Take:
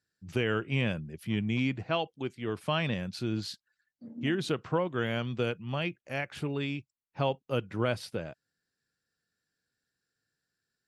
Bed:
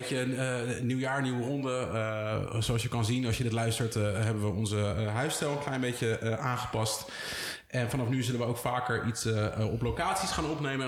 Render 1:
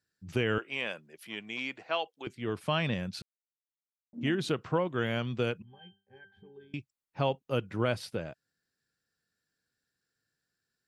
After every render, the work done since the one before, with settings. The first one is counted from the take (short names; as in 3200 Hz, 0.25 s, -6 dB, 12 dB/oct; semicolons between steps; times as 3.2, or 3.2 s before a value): 0.58–2.27 HPF 540 Hz; 3.22–4.13 mute; 5.62–6.74 octave resonator G, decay 0.29 s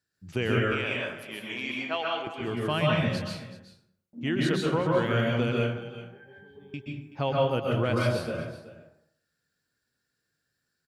echo 0.378 s -15.5 dB; plate-style reverb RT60 0.69 s, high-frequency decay 0.6×, pre-delay 0.115 s, DRR -3 dB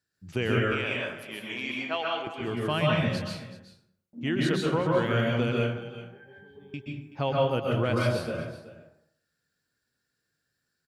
nothing audible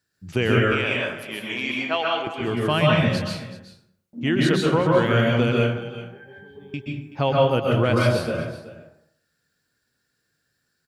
gain +6.5 dB